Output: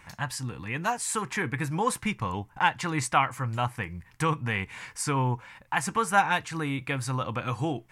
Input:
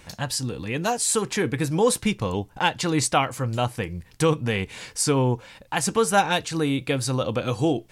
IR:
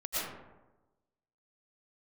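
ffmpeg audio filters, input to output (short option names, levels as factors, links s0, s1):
-af "equalizer=f=125:t=o:w=1:g=4,equalizer=f=500:t=o:w=1:g=-6,equalizer=f=1000:t=o:w=1:g=9,equalizer=f=2000:t=o:w=1:g=8,equalizer=f=4000:t=o:w=1:g=-5,volume=0.422"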